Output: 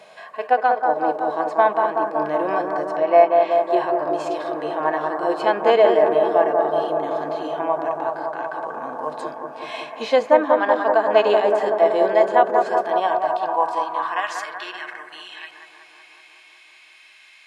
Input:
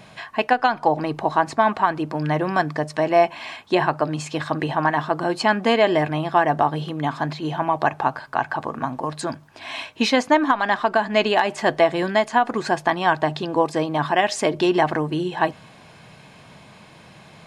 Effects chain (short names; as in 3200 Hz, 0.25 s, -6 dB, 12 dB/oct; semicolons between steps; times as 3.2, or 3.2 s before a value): 2.96–3.51 BPF 260–3600 Hz; in parallel at -2.5 dB: limiter -16 dBFS, peak gain reduction 11.5 dB; on the sum: harmonic-percussive split percussive -16 dB; analogue delay 0.188 s, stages 2048, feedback 77%, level -4 dB; high-pass sweep 500 Hz -> 2300 Hz, 12.79–15.36; gain -3.5 dB